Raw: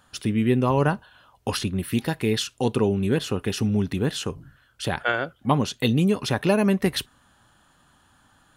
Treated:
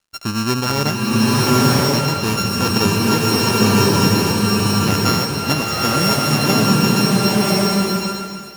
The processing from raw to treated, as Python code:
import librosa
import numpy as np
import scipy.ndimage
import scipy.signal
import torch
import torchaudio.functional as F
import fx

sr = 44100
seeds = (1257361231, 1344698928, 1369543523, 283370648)

y = np.r_[np.sort(x[:len(x) // 32 * 32].reshape(-1, 32), axis=1).ravel(), x[len(x) // 32 * 32:]]
y = fx.peak_eq(y, sr, hz=5500.0, db=12.5, octaves=0.25)
y = fx.rider(y, sr, range_db=10, speed_s=2.0)
y = np.sign(y) * np.maximum(np.abs(y) - 10.0 ** (-51.0 / 20.0), 0.0)
y = fx.rev_bloom(y, sr, seeds[0], attack_ms=1080, drr_db=-6.0)
y = y * librosa.db_to_amplitude(1.0)